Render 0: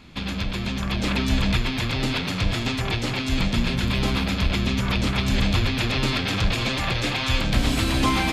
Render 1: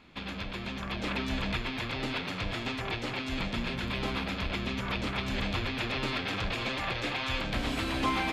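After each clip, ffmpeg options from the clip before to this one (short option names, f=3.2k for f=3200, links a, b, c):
-af "bass=f=250:g=-8,treble=f=4k:g=-9,volume=-5.5dB"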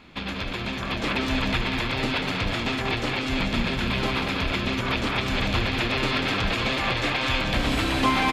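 -af "aecho=1:1:191:0.473,volume=7dB"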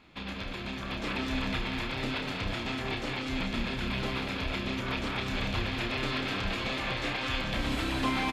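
-filter_complex "[0:a]asplit=2[a][b];[b]adelay=31,volume=-6.5dB[c];[a][c]amix=inputs=2:normalize=0,volume=-8.5dB"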